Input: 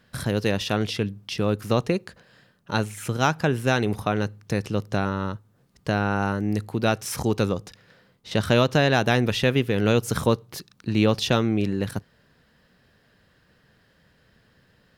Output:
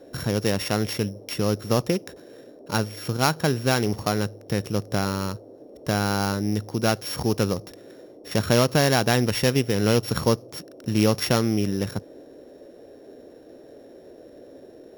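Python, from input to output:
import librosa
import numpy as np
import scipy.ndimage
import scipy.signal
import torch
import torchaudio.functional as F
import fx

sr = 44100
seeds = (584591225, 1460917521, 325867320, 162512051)

y = np.r_[np.sort(x[:len(x) // 8 * 8].reshape(-1, 8), axis=1).ravel(), x[len(x) // 8 * 8:]]
y = fx.dmg_noise_band(y, sr, seeds[0], low_hz=250.0, high_hz=600.0, level_db=-46.0)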